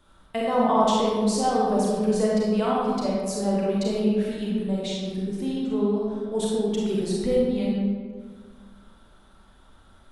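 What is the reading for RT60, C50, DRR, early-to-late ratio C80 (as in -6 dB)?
1.7 s, -2.5 dB, -5.0 dB, 0.5 dB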